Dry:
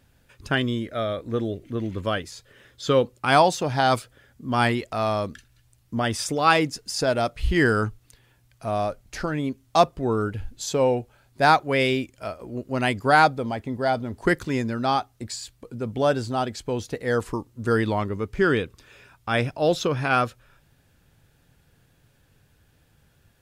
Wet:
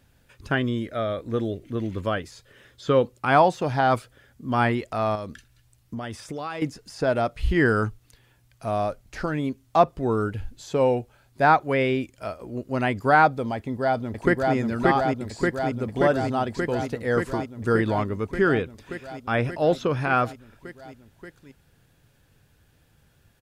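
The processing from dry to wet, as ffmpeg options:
-filter_complex "[0:a]asettb=1/sr,asplit=3[s0][s1][s2];[s0]atrim=end=5.154[s3];[s1]atrim=start=5.15:end=6.62,asetpts=PTS-STARTPTS,afade=t=in:d=0.004:c=qsin,afade=t=out:st=1.466:d=0.004:c=qsin,acompressor=threshold=0.0355:ratio=6:attack=3.2:release=140:knee=1:detection=peak[s4];[s2]atrim=start=6.616[s5];[s3][s4]acrossfade=d=0.004:c1=hsin:c2=qsin[s6];[s6][s5]acrossfade=d=0.004:c1=qsin:c2=hsin,asplit=2[s7][s8];[s8]afade=t=in:st=13.56:d=0.01,afade=t=out:st=14.55:d=0.01,aecho=0:1:580|1160|1740|2320|2900|3480|4060|4640|5220|5800|6380|6960:0.891251|0.713001|0.570401|0.45632|0.365056|0.292045|0.233636|0.186909|0.149527|0.119622|0.0956973|0.0765579[s9];[s7][s9]amix=inputs=2:normalize=0,acrossover=split=2500[s10][s11];[s11]acompressor=threshold=0.00708:ratio=4:attack=1:release=60[s12];[s10][s12]amix=inputs=2:normalize=0"

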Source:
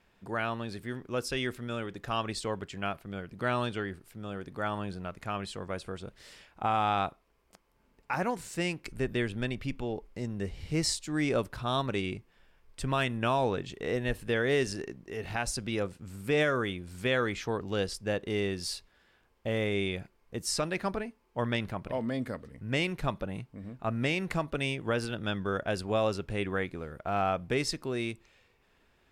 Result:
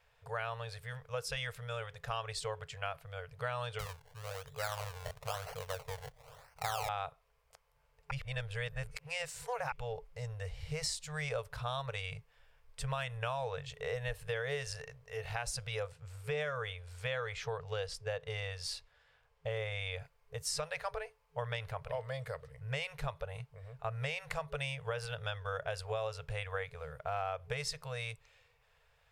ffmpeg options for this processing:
-filter_complex "[0:a]asettb=1/sr,asplit=3[s0][s1][s2];[s0]atrim=end=3.794[s3];[s1]atrim=start=3.79:end=6.89,asetpts=PTS-STARTPTS,afade=t=in:d=0.004:c=qsin,afade=t=out:st=3.096:d=0.004:c=qsin,acrusher=samples=24:mix=1:aa=0.000001:lfo=1:lforange=24:lforate=1[s4];[s2]atrim=start=6.886[s5];[s3][s4]acrossfade=d=0.004:c1=hsin:c2=qsin[s6];[s6][s5]acrossfade=d=0.004:c1=qsin:c2=hsin,asettb=1/sr,asplit=3[s7][s8][s9];[s7]atrim=end=15.924[s10];[s8]atrim=start=15.92:end=20.01,asetpts=PTS-STARTPTS,afade=t=in:d=0.004:c=qsin,afade=t=out:st=4.086:d=0.004:c=qsin,highshelf=f=10000:g=-10.5[s11];[s9]atrim=start=20.006[s12];[s10][s11]acrossfade=d=0.004:c1=hsin:c2=qsin[s13];[s13][s12]acrossfade=d=0.004:c1=qsin:c2=hsin,asplit=3[s14][s15][s16];[s14]atrim=end=8.112[s17];[s15]atrim=start=8.108:end=9.722,asetpts=PTS-STARTPTS,areverse[s18];[s16]atrim=start=9.718[s19];[s17][s18]acrossfade=d=0.004:c1=hsin:c2=hsin[s20];[s20][s19]acrossfade=d=0.004:c1=hsin:c2=hsin,afftfilt=real='re*(1-between(b*sr/4096,160,420))':imag='im*(1-between(b*sr/4096,160,420))':win_size=4096:overlap=0.75,acompressor=threshold=0.0282:ratio=6,volume=0.794"

